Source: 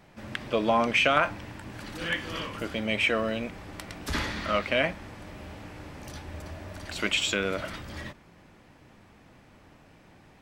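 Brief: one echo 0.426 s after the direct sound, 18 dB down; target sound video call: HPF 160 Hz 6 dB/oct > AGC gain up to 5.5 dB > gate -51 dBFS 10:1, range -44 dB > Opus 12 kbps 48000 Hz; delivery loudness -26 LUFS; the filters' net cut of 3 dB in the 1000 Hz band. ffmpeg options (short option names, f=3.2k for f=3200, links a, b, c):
-af "highpass=f=160:p=1,equalizer=f=1k:t=o:g=-4,aecho=1:1:426:0.126,dynaudnorm=m=5.5dB,agate=range=-44dB:threshold=-51dB:ratio=10,volume=4dB" -ar 48000 -c:a libopus -b:a 12k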